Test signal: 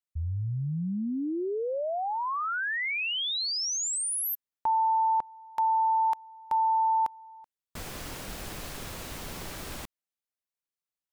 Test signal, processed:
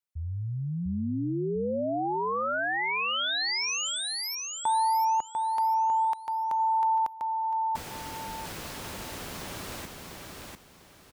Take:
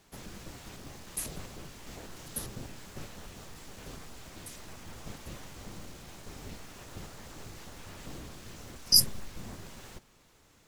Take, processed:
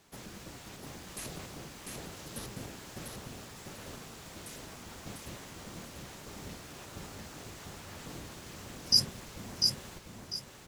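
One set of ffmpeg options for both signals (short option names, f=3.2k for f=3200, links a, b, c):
-filter_complex "[0:a]highpass=f=78:p=1,acrossover=split=6500[a][b];[b]acompressor=threshold=-43dB:ratio=4:attack=1:release=60[c];[a][c]amix=inputs=2:normalize=0,aecho=1:1:697|1394|2091|2788:0.668|0.18|0.0487|0.0132"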